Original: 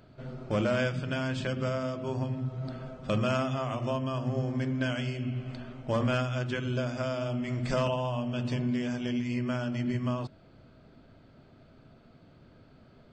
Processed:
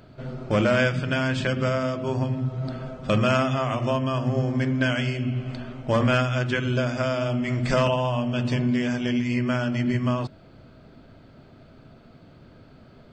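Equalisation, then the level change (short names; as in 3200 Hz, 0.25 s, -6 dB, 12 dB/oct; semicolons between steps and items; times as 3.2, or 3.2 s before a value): dynamic EQ 1900 Hz, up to +4 dB, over -46 dBFS, Q 1.5; +6.5 dB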